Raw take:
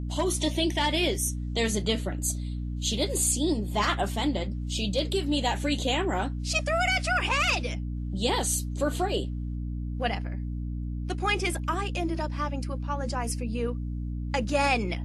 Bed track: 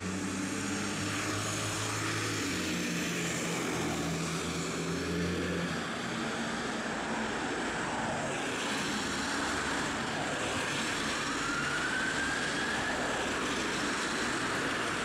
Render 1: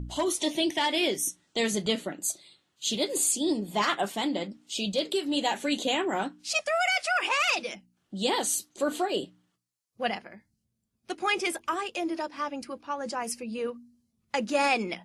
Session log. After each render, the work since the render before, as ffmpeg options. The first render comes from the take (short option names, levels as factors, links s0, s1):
-af "bandreject=f=60:t=h:w=4,bandreject=f=120:t=h:w=4,bandreject=f=180:t=h:w=4,bandreject=f=240:t=h:w=4,bandreject=f=300:t=h:w=4"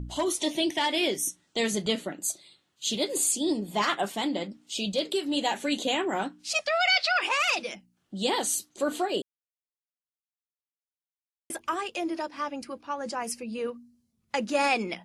-filter_complex "[0:a]asettb=1/sr,asplit=3[s0][s1][s2];[s0]atrim=end=6.664[s3];[s1]atrim=start=6.66:end=7.22,asetpts=PTS-STARTPTS,afade=t=in:d=0.004:c=qsin,afade=t=out:st=0.556:d=0.004:c=qsin,lowpass=f=4200:t=q:w=5.6[s4];[s2]atrim=start=7.216[s5];[s3][s4]acrossfade=d=0.004:c1=hsin:c2=qsin[s6];[s6][s5]acrossfade=d=0.004:c1=qsin:c2=hsin,asplit=3[s7][s8][s9];[s7]atrim=end=9.22,asetpts=PTS-STARTPTS,afade=t=out:st=9.216:d=0.004:c=hsin[s10];[s8]atrim=start=9.22:end=11.5,asetpts=PTS-STARTPTS,volume=0[s11];[s9]atrim=start=11.5,asetpts=PTS-STARTPTS,afade=t=in:d=0.004:c=hsin[s12];[s10][s11][s12]concat=n=3:v=0:a=1"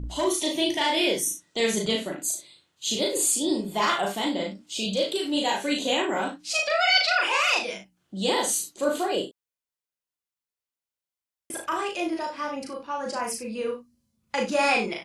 -filter_complex "[0:a]asplit=2[s0][s1];[s1]adelay=37,volume=0.75[s2];[s0][s2]amix=inputs=2:normalize=0,aecho=1:1:35|57:0.398|0.266"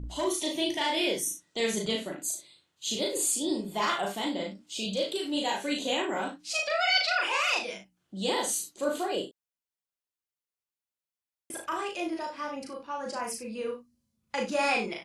-af "volume=0.596"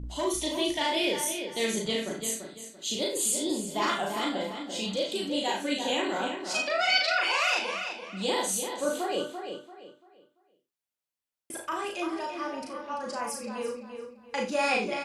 -filter_complex "[0:a]asplit=2[s0][s1];[s1]adelay=49,volume=0.224[s2];[s0][s2]amix=inputs=2:normalize=0,asplit=2[s3][s4];[s4]adelay=340,lowpass=f=4500:p=1,volume=0.447,asplit=2[s5][s6];[s6]adelay=340,lowpass=f=4500:p=1,volume=0.31,asplit=2[s7][s8];[s8]adelay=340,lowpass=f=4500:p=1,volume=0.31,asplit=2[s9][s10];[s10]adelay=340,lowpass=f=4500:p=1,volume=0.31[s11];[s3][s5][s7][s9][s11]amix=inputs=5:normalize=0"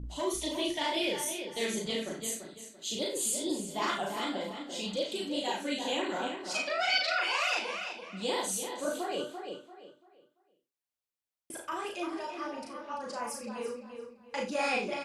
-af "flanger=delay=0.2:depth=8.2:regen=-42:speed=2:shape=sinusoidal"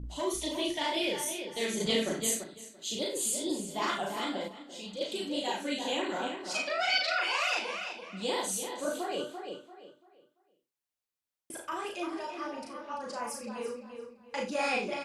-filter_complex "[0:a]asettb=1/sr,asplit=3[s0][s1][s2];[s0]atrim=end=1.804[s3];[s1]atrim=start=1.8:end=2.44,asetpts=PTS-STARTPTS,afade=t=in:d=0.004:c=qsin,afade=t=out:st=0.636:d=0.004:c=qsin,acontrast=38[s4];[s2]atrim=start=2.436[s5];[s3][s4]acrossfade=d=0.004:c1=hsin:c2=qsin[s6];[s6][s5]acrossfade=d=0.004:c1=qsin:c2=hsin,asplit=3[s7][s8][s9];[s7]atrim=end=4.482[s10];[s8]atrim=start=4.478:end=5.012,asetpts=PTS-STARTPTS,volume=0.473[s11];[s9]atrim=start=5.008[s12];[s10][s11]acrossfade=d=0.004:c1=hsin:c2=hsin[s13];[s13][s12]acrossfade=d=0.004:c1=hsin:c2=hsin"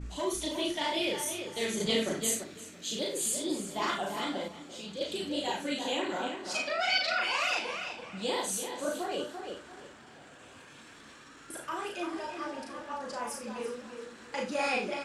-filter_complex "[1:a]volume=0.106[s0];[0:a][s0]amix=inputs=2:normalize=0"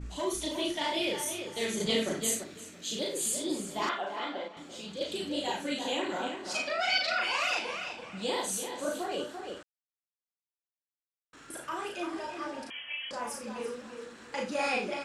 -filter_complex "[0:a]asettb=1/sr,asplit=3[s0][s1][s2];[s0]atrim=end=3.894[s3];[s1]atrim=start=3.89:end=4.57,asetpts=PTS-STARTPTS,afade=t=in:d=0.004:c=qsin,afade=t=out:st=0.676:d=0.004:c=qsin,highpass=370,lowpass=3300[s4];[s2]atrim=start=4.566[s5];[s3][s4]acrossfade=d=0.004:c1=hsin:c2=qsin[s6];[s6][s5]acrossfade=d=0.004:c1=qsin:c2=hsin,asettb=1/sr,asplit=3[s7][s8][s9];[s7]atrim=end=12.704[s10];[s8]atrim=start=12.7:end=13.11,asetpts=PTS-STARTPTS,afade=t=in:d=0.004:c=qsin,afade=t=out:st=0.406:d=0.004:c=qsin,lowpass=f=3000:t=q:w=0.5098,lowpass=f=3000:t=q:w=0.6013,lowpass=f=3000:t=q:w=0.9,lowpass=f=3000:t=q:w=2.563,afreqshift=-3500[s11];[s9]atrim=start=13.106[s12];[s10][s11]acrossfade=d=0.004:c1=hsin:c2=qsin[s13];[s13][s12]acrossfade=d=0.004:c1=qsin:c2=hsin,asplit=3[s14][s15][s16];[s14]atrim=end=9.63,asetpts=PTS-STARTPTS,afade=t=out:st=9.626:d=0.004:c=hsin[s17];[s15]atrim=start=9.63:end=11.33,asetpts=PTS-STARTPTS,volume=0[s18];[s16]atrim=start=11.33,asetpts=PTS-STARTPTS,afade=t=in:d=0.004:c=hsin[s19];[s17][s18][s19]concat=n=3:v=0:a=1"